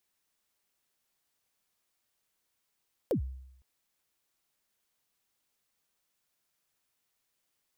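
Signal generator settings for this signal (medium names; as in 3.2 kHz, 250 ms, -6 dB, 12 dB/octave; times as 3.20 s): kick drum length 0.51 s, from 590 Hz, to 65 Hz, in 101 ms, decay 0.80 s, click on, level -23 dB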